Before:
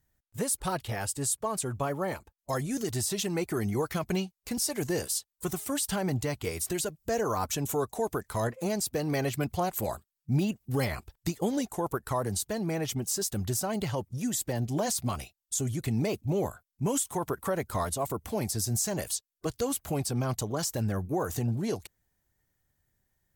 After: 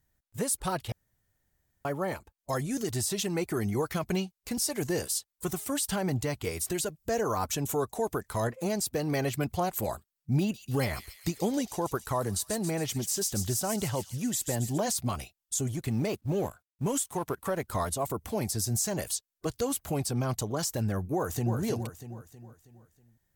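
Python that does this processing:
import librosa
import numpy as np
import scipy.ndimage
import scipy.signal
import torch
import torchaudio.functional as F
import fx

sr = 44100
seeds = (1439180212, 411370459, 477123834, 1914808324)

y = fx.echo_wet_highpass(x, sr, ms=138, feedback_pct=61, hz=3800.0, wet_db=-5, at=(10.4, 14.78))
y = fx.law_mismatch(y, sr, coded='A', at=(15.67, 17.68))
y = fx.echo_throw(y, sr, start_s=21.14, length_s=0.43, ms=320, feedback_pct=45, wet_db=-6.5)
y = fx.edit(y, sr, fx.room_tone_fill(start_s=0.92, length_s=0.93), tone=tone)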